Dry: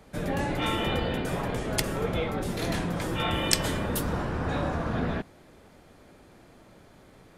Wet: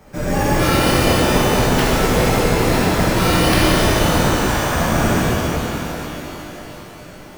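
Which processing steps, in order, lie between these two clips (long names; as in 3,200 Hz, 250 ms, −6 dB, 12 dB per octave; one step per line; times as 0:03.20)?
0:04.33–0:04.75: high-pass filter 810 Hz
bad sample-rate conversion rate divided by 6×, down filtered, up hold
reverb with rising layers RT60 3.7 s, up +12 semitones, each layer −8 dB, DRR −8 dB
level +5 dB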